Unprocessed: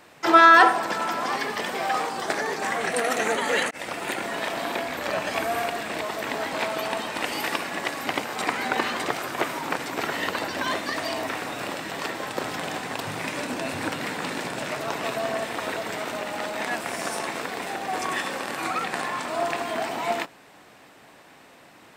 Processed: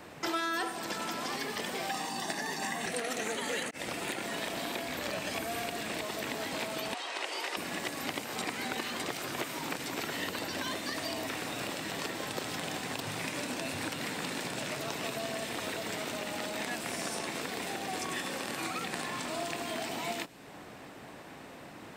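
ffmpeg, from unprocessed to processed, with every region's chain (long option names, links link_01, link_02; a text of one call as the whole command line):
ffmpeg -i in.wav -filter_complex "[0:a]asettb=1/sr,asplit=3[link_01][link_02][link_03];[link_01]atrim=end=1.904[link_04];[link_02]atrim=start=1.9:end=2.86,asetpts=PTS-STARTPTS,afade=type=in:duration=0.004:curve=qsin,afade=type=out:start_time=0.956:duration=0.004:curve=qsin,highpass=170,aecho=1:1:1.1:0.62,atrim=end_sample=42336[link_05];[link_03]atrim=start=2.856[link_06];[link_04][link_05]acrossfade=duration=0.004:curve1=hsin:curve2=qsin[link_07];[link_07][link_06]acrossfade=duration=0.004:curve1=qsin:curve2=hsin,asettb=1/sr,asplit=3[link_08][link_09][link_10];[link_08]atrim=end=6.944[link_11];[link_09]atrim=start=6.94:end=7.57,asetpts=PTS-STARTPTS,afade=type=in:duration=0.004:curve=qsin,afade=type=out:start_time=0.626:duration=0.004:curve=qsin,highpass=580,lowpass=6500,afreqshift=66[link_12];[link_10]atrim=start=7.566[link_13];[link_11][link_12]acrossfade=duration=0.004:curve1=hsin:curve2=qsin[link_14];[link_14][link_13]acrossfade=duration=0.004:curve1=qsin:curve2=hsin,lowshelf=frequency=470:gain=8,acrossover=split=480|2400|7600[link_15][link_16][link_17][link_18];[link_15]acompressor=threshold=-42dB:ratio=4[link_19];[link_16]acompressor=threshold=-42dB:ratio=4[link_20];[link_17]acompressor=threshold=-39dB:ratio=4[link_21];[link_18]acompressor=threshold=-46dB:ratio=4[link_22];[link_19][link_20][link_21][link_22]amix=inputs=4:normalize=0" out.wav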